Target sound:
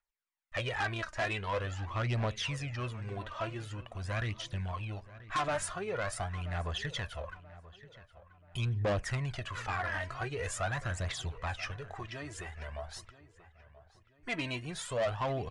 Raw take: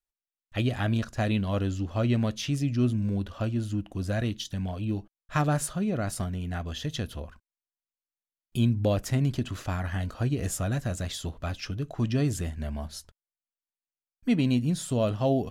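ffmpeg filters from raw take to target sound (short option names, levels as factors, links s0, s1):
-filter_complex "[0:a]equalizer=f=250:t=o:w=1:g=-12,equalizer=f=500:t=o:w=1:g=4,equalizer=f=1000:t=o:w=1:g=10,equalizer=f=2000:t=o:w=1:g=11,asettb=1/sr,asplit=3[s0][s1][s2];[s0]atrim=end=11.744[s3];[s1]atrim=start=11.74:end=12.88,asetpts=PTS-STARTPTS,afade=t=in:d=0.004:c=qsin,afade=t=out:st=1.136:d=0.004:c=qsin,acompressor=threshold=0.0251:ratio=6[s4];[s2]atrim=start=12.876[s5];[s3][s4]acrossfade=d=0.004:c1=hsin:c2=qsin[s6];[s6][s5]acrossfade=d=0.004:c1=qsin:c2=hsin,aphaser=in_gain=1:out_gain=1:delay=3.3:decay=0.61:speed=0.45:type=triangular,asoftclip=type=tanh:threshold=0.106,asplit=2[s7][s8];[s8]adelay=982,lowpass=f=2800:p=1,volume=0.141,asplit=2[s9][s10];[s10]adelay=982,lowpass=f=2800:p=1,volume=0.41,asplit=2[s11][s12];[s12]adelay=982,lowpass=f=2800:p=1,volume=0.41[s13];[s9][s11][s13]amix=inputs=3:normalize=0[s14];[s7][s14]amix=inputs=2:normalize=0,aresample=22050,aresample=44100,volume=0.422"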